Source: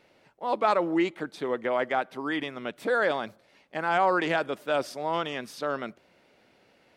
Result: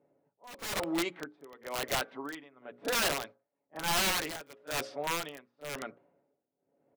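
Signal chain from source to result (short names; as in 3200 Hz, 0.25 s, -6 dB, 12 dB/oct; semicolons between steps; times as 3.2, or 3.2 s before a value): notches 60/120/180/240/300/360/420/480/540 Hz; low-pass opened by the level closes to 500 Hz, open at -21 dBFS; HPF 240 Hz 6 dB/oct; comb 7.1 ms, depth 46%; wrapped overs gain 20.5 dB; tremolo 1 Hz, depth 89%; reverse echo 34 ms -16.5 dB; gain -2.5 dB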